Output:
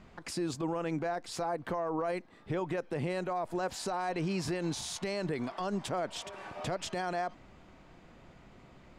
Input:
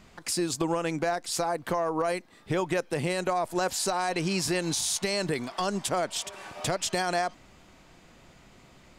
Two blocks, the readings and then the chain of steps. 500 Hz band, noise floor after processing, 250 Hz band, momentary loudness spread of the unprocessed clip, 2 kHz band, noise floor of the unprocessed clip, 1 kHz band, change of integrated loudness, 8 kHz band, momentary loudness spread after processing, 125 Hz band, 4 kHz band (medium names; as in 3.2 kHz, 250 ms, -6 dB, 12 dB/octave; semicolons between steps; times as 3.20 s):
-5.5 dB, -57 dBFS, -4.0 dB, 5 LU, -8.0 dB, -56 dBFS, -6.0 dB, -6.5 dB, -13.0 dB, 5 LU, -3.5 dB, -9.5 dB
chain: low-pass 1.7 kHz 6 dB/octave; peak limiter -25.5 dBFS, peak gain reduction 11 dB